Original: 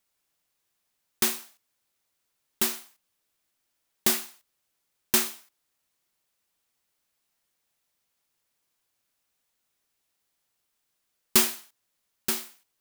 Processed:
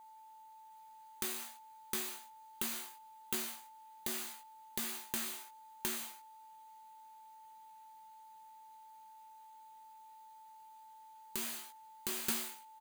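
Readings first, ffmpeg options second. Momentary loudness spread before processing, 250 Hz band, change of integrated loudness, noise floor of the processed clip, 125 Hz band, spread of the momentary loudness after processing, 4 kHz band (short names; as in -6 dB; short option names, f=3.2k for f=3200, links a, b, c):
16 LU, -10.5 dB, -14.0 dB, -57 dBFS, -10.0 dB, 19 LU, -11.0 dB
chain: -af "aecho=1:1:711:0.668,flanger=delay=16.5:depth=2.4:speed=1.2,aeval=exprs='val(0)+0.000794*sin(2*PI*880*n/s)':c=same,equalizer=f=75:w=1.8:g=-7.5,acompressor=threshold=-34dB:ratio=8,bandreject=f=5.4k:w=6.8,alimiter=level_in=4dB:limit=-24dB:level=0:latency=1:release=209,volume=-4dB,volume=8dB"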